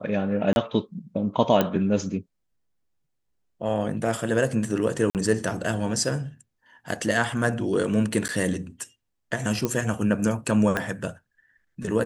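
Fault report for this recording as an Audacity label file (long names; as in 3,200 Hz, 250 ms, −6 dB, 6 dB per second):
0.530000	0.560000	drop-out 31 ms
1.610000	1.610000	click −8 dBFS
5.100000	5.150000	drop-out 48 ms
8.280000	8.290000	drop-out 9.7 ms
9.650000	9.650000	click −11 dBFS
10.770000	10.770000	click −12 dBFS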